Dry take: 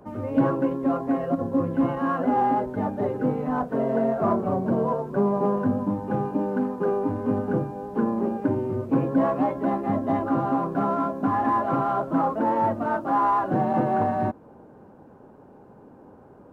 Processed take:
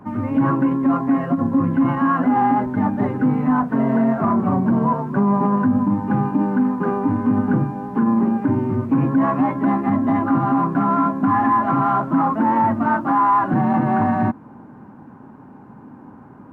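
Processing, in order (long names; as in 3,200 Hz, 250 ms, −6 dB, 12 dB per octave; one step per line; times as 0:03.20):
octave-band graphic EQ 125/250/500/1,000/2,000 Hz +8/+11/−8/+9/+9 dB
brickwall limiter −9.5 dBFS, peak gain reduction 8 dB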